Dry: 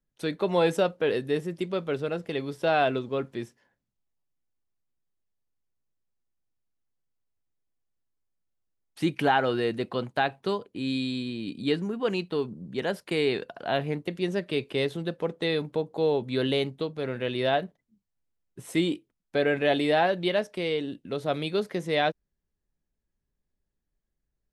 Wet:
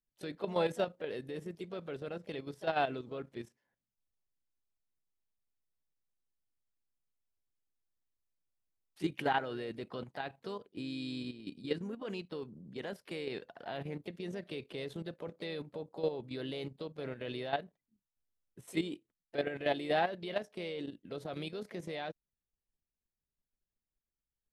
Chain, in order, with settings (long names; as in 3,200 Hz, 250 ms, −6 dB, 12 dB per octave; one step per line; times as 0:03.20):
pitch-shifted copies added +3 semitones −13 dB
output level in coarse steps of 11 dB
level −6.5 dB